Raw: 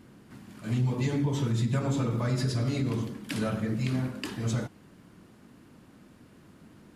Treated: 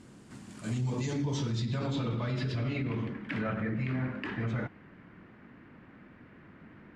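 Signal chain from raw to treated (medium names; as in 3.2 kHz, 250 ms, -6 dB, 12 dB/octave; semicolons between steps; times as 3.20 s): peak limiter -25 dBFS, peak gain reduction 7 dB; low-pass sweep 8.1 kHz -> 2 kHz, 0.69–3.18 s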